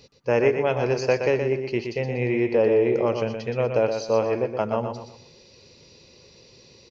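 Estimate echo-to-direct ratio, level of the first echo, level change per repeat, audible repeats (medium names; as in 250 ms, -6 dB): -6.0 dB, -6.5 dB, -10.0 dB, 3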